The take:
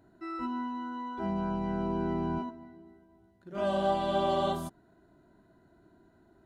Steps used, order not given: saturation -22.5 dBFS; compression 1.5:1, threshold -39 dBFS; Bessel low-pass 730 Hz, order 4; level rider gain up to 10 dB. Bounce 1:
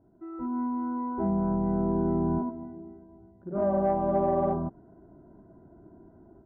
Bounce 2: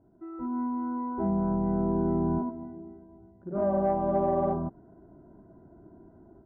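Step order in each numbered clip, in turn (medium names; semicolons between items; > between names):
Bessel low-pass > compression > saturation > level rider; compression > Bessel low-pass > saturation > level rider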